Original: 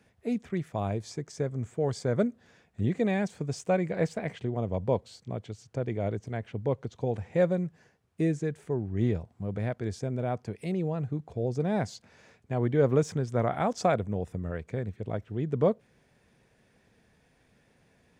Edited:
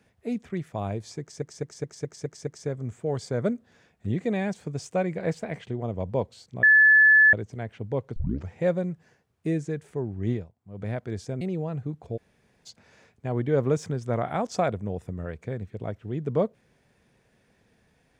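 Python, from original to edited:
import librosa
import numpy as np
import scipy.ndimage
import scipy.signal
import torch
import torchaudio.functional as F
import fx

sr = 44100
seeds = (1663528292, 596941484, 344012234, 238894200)

y = fx.edit(x, sr, fx.stutter(start_s=1.21, slice_s=0.21, count=7),
    fx.bleep(start_s=5.37, length_s=0.7, hz=1730.0, db=-12.5),
    fx.tape_start(start_s=6.9, length_s=0.33),
    fx.fade_down_up(start_s=9.05, length_s=0.54, db=-15.5, fade_s=0.25, curve='qua'),
    fx.cut(start_s=10.15, length_s=0.52),
    fx.room_tone_fill(start_s=11.43, length_s=0.49, crossfade_s=0.02), tone=tone)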